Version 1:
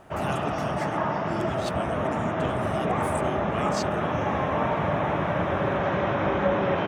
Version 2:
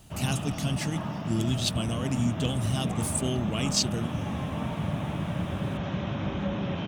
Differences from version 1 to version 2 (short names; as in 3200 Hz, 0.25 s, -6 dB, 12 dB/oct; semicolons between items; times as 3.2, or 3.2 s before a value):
speech +11.0 dB; master: add band shelf 860 Hz -12.5 dB 3 oct